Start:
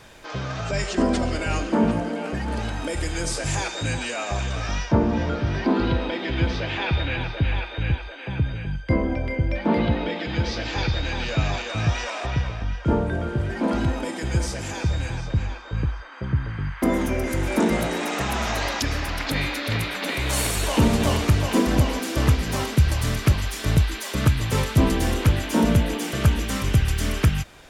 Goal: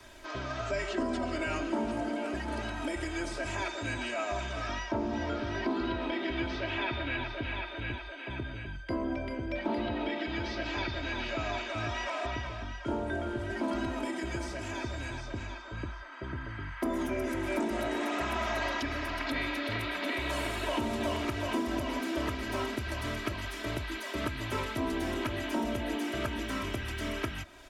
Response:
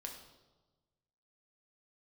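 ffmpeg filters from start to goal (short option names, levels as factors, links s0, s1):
-filter_complex "[0:a]aecho=1:1:3.1:0.87,acrossover=split=93|3400[s0][s1][s2];[s0]acompressor=threshold=0.02:ratio=4[s3];[s1]acompressor=threshold=0.1:ratio=4[s4];[s2]acompressor=threshold=0.00562:ratio=4[s5];[s3][s4][s5]amix=inputs=3:normalize=0,acrossover=split=290|3500[s6][s7][s8];[s6]asoftclip=type=tanh:threshold=0.0376[s9];[s9][s7][s8]amix=inputs=3:normalize=0,volume=0.447"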